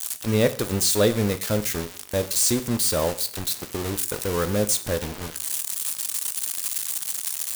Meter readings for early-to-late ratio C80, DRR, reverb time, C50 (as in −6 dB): 19.0 dB, 10.5 dB, 0.55 s, 15.5 dB